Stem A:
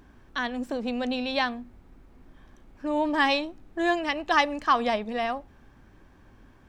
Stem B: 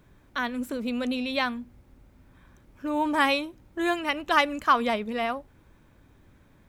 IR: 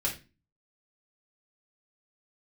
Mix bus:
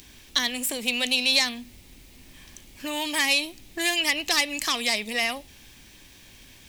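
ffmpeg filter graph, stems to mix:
-filter_complex "[0:a]asoftclip=type=tanh:threshold=-17.5dB,volume=-1dB[a];[1:a]volume=-5.5dB[b];[a][b]amix=inputs=2:normalize=0,acrossover=split=530|1700[c][d][e];[c]acompressor=threshold=-36dB:ratio=4[f];[d]acompressor=threshold=-35dB:ratio=4[g];[e]acompressor=threshold=-37dB:ratio=4[h];[f][g][h]amix=inputs=3:normalize=0,aexciter=amount=10:drive=5.4:freq=2.1k"

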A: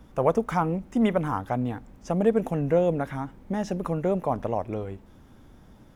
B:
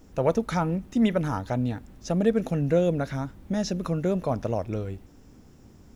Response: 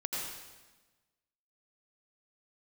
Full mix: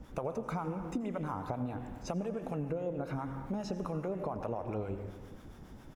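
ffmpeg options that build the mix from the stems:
-filter_complex "[0:a]acompressor=threshold=-29dB:ratio=6,acrossover=split=690[a][b];[a]aeval=exprs='val(0)*(1-0.7/2+0.7/2*cos(2*PI*7.3*n/s))':c=same[c];[b]aeval=exprs='val(0)*(1-0.7/2-0.7/2*cos(2*PI*7.3*n/s))':c=same[d];[c][d]amix=inputs=2:normalize=0,adynamicequalizer=threshold=0.002:dfrequency=2000:dqfactor=0.7:tfrequency=2000:tqfactor=0.7:attack=5:release=100:ratio=0.375:range=2:mode=cutabove:tftype=highshelf,volume=0dB,asplit=2[e][f];[f]volume=-5.5dB[g];[1:a]equalizer=f=1.3k:w=0.37:g=12,alimiter=limit=-22dB:level=0:latency=1,adelay=0.5,volume=-14dB[h];[2:a]atrim=start_sample=2205[i];[g][i]afir=irnorm=-1:irlink=0[j];[e][h][j]amix=inputs=3:normalize=0,acompressor=threshold=-34dB:ratio=3"

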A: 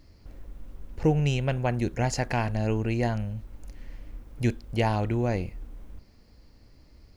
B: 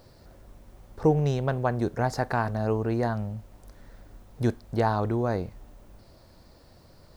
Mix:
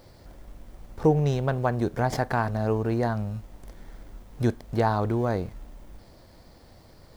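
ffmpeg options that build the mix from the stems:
-filter_complex "[0:a]acompressor=threshold=-27dB:ratio=6,aexciter=amount=3.7:drive=9:freq=2.3k,acrusher=samples=33:mix=1:aa=0.000001,volume=-9dB[a];[1:a]volume=1dB,asplit=2[b][c];[c]apad=whole_len=315908[d];[a][d]sidechaincompress=threshold=-32dB:ratio=8:attack=16:release=132[e];[e][b]amix=inputs=2:normalize=0"

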